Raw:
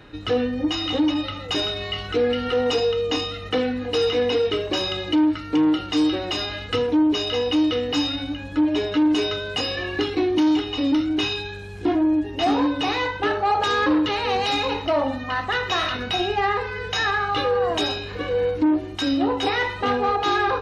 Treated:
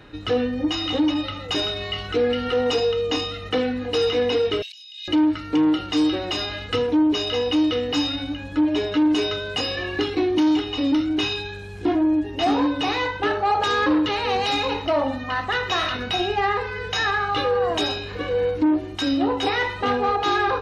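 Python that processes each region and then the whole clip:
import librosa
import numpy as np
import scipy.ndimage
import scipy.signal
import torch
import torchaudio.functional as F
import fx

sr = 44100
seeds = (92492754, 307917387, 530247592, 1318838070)

y = fx.chain(x, sr, fx.steep_highpass(hz=2700.0, slope=36),
    fx.over_compress(threshold_db=-40.0, ratio=-1.0), at=(4.62, 5.08))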